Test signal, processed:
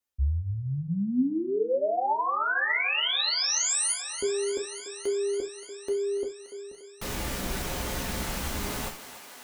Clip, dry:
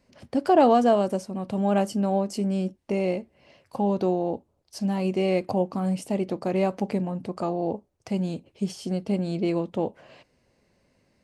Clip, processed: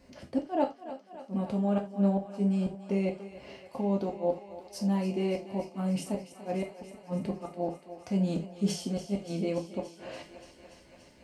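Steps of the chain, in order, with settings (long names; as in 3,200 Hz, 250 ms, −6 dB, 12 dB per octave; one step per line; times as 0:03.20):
parametric band 190 Hz +3 dB 2.5 octaves
reversed playback
downward compressor 6 to 1, threshold −32 dBFS
reversed playback
gate with flip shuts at −25 dBFS, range −36 dB
on a send: feedback echo with a high-pass in the loop 288 ms, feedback 79%, high-pass 340 Hz, level −12.5 dB
on the sum: reverb whose tail is shaped and stops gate 110 ms falling, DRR 1.5 dB
flanger 0.19 Hz, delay 2.7 ms, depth 3 ms, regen +84%
level +8.5 dB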